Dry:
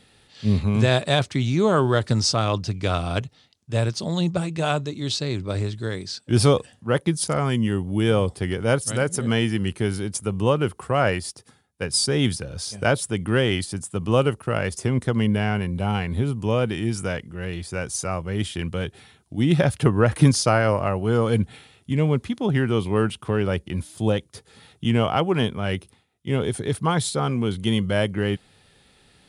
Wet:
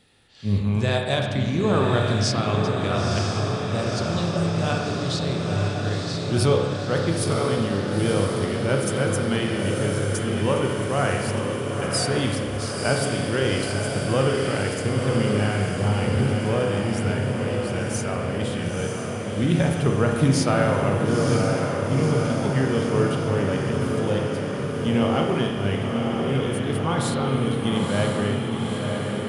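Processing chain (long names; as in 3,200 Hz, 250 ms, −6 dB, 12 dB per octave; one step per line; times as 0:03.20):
feedback delay with all-pass diffusion 969 ms, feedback 70%, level −4 dB
spring reverb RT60 1.5 s, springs 30/58 ms, chirp 25 ms, DRR 1.5 dB
level −4.5 dB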